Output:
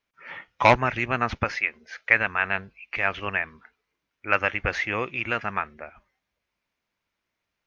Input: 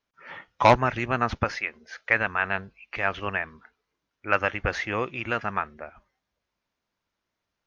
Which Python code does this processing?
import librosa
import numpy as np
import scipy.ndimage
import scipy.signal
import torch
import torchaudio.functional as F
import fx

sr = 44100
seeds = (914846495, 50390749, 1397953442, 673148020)

y = fx.peak_eq(x, sr, hz=2300.0, db=6.5, octaves=0.72)
y = y * 10.0 ** (-1.0 / 20.0)